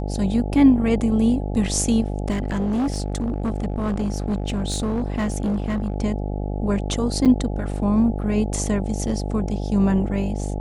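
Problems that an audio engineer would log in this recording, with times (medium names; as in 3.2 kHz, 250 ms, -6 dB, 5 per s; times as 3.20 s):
buzz 50 Hz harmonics 17 -26 dBFS
2.30–5.94 s: clipped -19 dBFS
7.25–7.26 s: dropout 6.7 ms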